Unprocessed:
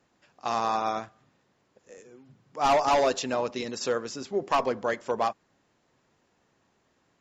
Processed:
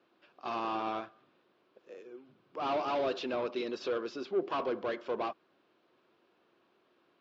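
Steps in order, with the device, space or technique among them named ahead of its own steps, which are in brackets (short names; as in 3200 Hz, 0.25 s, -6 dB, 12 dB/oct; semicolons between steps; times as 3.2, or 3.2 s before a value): overdrive pedal into a guitar cabinet (overdrive pedal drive 18 dB, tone 3500 Hz, clips at -17 dBFS; speaker cabinet 92–4200 Hz, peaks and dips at 130 Hz -4 dB, 350 Hz +9 dB, 850 Hz -6 dB, 1900 Hz -9 dB); gain -9 dB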